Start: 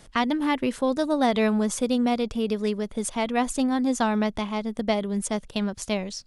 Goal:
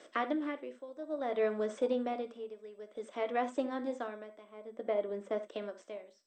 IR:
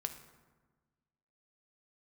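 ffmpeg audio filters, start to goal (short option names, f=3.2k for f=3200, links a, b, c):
-filter_complex "[0:a]acrossover=split=2600[a][b];[b]acompressor=threshold=-42dB:ratio=4:attack=1:release=60[c];[a][c]amix=inputs=2:normalize=0,asettb=1/sr,asplit=3[d][e][f];[d]atrim=end=4.444[g];[e]atrim=start=4.44:end=5.37,asetpts=PTS-STARTPTS,afade=t=in:d=0.004:c=qsin,afade=t=out:st=0.926:d=0.004:c=qsin,aemphasis=mode=reproduction:type=75kf[h];[f]atrim=start=5.366[i];[g][h]acrossfade=d=0.004:c1=hsin:c2=qsin[j];[j][i]acrossfade=d=0.004:c1=qsin:c2=hsin,asplit=2[k][l];[l]acompressor=threshold=-34dB:ratio=20,volume=2dB[m];[k][m]amix=inputs=2:normalize=0,tremolo=f=0.57:d=0.87,highpass=f=320:w=0.5412,highpass=f=320:w=1.3066,equalizer=f=320:t=q:w=4:g=6,equalizer=f=590:t=q:w=4:g=8,equalizer=f=860:t=q:w=4:g=-10,equalizer=f=2.6k:t=q:w=4:g=-4,equalizer=f=4.5k:t=q:w=4:g=-10,equalizer=f=6.7k:t=q:w=4:g=-9,lowpass=f=8.9k:w=0.5412,lowpass=f=8.9k:w=1.3066[n];[1:a]atrim=start_sample=2205,afade=t=out:st=0.14:d=0.01,atrim=end_sample=6615[o];[n][o]afir=irnorm=-1:irlink=0,volume=-7dB" -ar 32000 -c:a mp2 -b:a 64k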